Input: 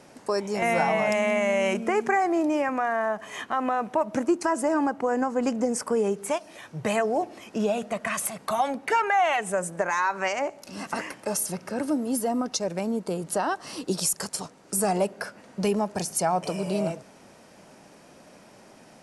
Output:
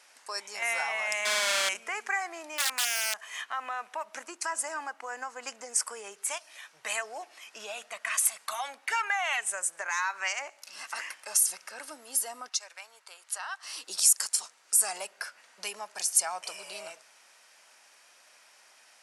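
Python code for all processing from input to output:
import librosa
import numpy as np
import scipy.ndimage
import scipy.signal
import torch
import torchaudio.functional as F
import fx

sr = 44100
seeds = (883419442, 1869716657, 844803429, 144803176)

y = fx.chain(x, sr, fx.halfwave_hold(),
    fx.air_absorb(metres=51.0), at=(1.25, 1.69))
y = fx.chain(y, sr, fx.high_shelf(hz=3800.0, db=3.0),
    fx.overflow_wrap(gain_db=19.5), at=(2.58, 3.21))
y = fx.chain(y, sr, fx.highpass(hz=990.0, slope=12),
    fx.high_shelf(hz=4300.0, db=-7.0), at=(12.49, 13.63))
y = scipy.signal.sosfilt(scipy.signal.butter(2, 1500.0, 'highpass', fs=sr, output='sos'), y)
y = fx.dynamic_eq(y, sr, hz=8400.0, q=0.95, threshold_db=-43.0, ratio=4.0, max_db=6)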